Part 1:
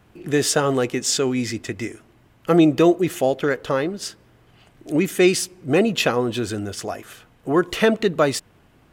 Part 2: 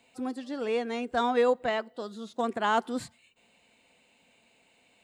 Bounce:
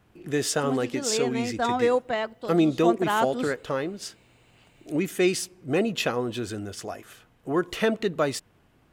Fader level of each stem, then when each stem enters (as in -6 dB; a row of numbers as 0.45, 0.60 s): -6.5, +1.5 dB; 0.00, 0.45 s